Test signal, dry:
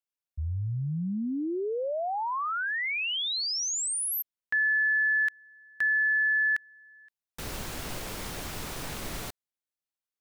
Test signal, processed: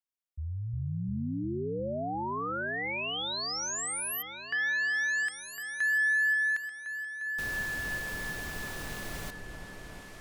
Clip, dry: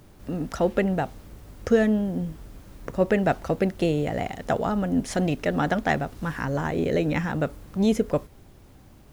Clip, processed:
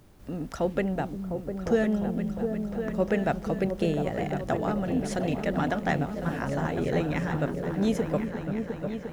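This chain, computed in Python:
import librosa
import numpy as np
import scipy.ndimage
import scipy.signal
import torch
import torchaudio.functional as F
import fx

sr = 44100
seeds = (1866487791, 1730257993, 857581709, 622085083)

y = fx.echo_opening(x, sr, ms=352, hz=200, octaves=2, feedback_pct=70, wet_db=-3)
y = y * librosa.db_to_amplitude(-4.5)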